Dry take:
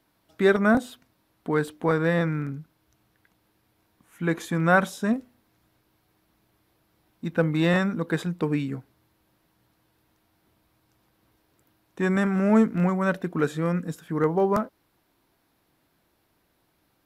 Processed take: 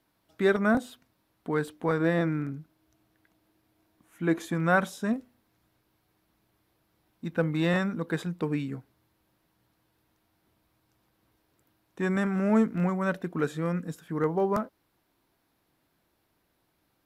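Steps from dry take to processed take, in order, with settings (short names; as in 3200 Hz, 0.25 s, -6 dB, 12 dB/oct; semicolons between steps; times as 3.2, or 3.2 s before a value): 2–4.54 small resonant body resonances 320/650 Hz, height 7 dB; gain -4 dB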